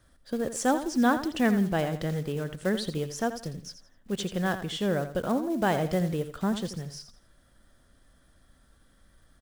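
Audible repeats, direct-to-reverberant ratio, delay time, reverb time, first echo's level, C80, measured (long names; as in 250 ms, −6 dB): 3, no reverb audible, 84 ms, no reverb audible, −11.0 dB, no reverb audible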